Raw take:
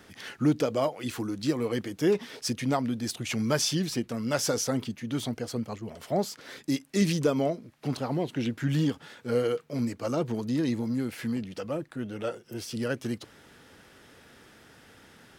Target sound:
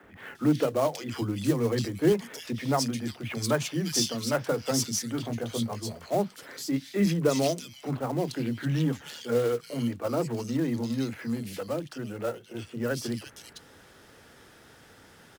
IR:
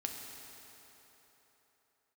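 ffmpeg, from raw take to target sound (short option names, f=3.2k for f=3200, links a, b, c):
-filter_complex "[0:a]asettb=1/sr,asplit=3[a][b][c];[a]atrim=end=1.164[d];[b]atrim=start=1.16:end=2.09,asetpts=PTS-STARTPTS,afade=t=in:d=0.004:c=qsin,afade=t=out:st=0.926:d=0.004:c=qsin,lowshelf=f=160:g=10.5[e];[c]atrim=start=2.086[f];[d][e]acrossfade=d=0.004:c1=hsin:c2=qsin[g];[g][f]acrossfade=d=0.004:c1=qsin:c2=hsin,asettb=1/sr,asplit=3[h][i][j];[h]atrim=end=5.124[k];[i]atrim=start=5.12:end=5.9,asetpts=PTS-STARTPTS,afade=t=in:d=0.004:c=qsin,afade=t=out:st=0.776:d=0.004:c=qsin,asplit=2[l][m];[m]adelay=18,volume=-5.5dB[n];[l][n]amix=inputs=2:normalize=0,atrim=end_sample=34398[o];[j]atrim=start=5.896[p];[k][o]acrossfade=d=0.004:c1=hsin:c2=qsin[q];[q][p]acrossfade=d=0.004:c1=qsin:c2=hsin,acrossover=split=230|2500[r][s][t];[r]adelay=30[u];[t]adelay=350[v];[u][s][v]amix=inputs=3:normalize=0,acrossover=split=340[w][x];[x]acrusher=bits=4:mode=log:mix=0:aa=0.000001[y];[w][y]amix=inputs=2:normalize=0,volume=1.5dB"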